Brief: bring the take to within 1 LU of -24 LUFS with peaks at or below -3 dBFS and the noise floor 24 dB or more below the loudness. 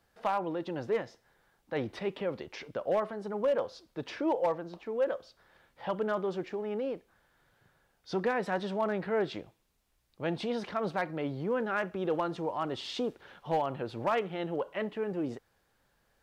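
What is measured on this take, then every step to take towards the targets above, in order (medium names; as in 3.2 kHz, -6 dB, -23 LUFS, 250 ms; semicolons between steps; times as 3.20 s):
clipped samples 0.3%; clipping level -22.0 dBFS; loudness -33.5 LUFS; peak level -22.0 dBFS; loudness target -24.0 LUFS
-> clip repair -22 dBFS; trim +9.5 dB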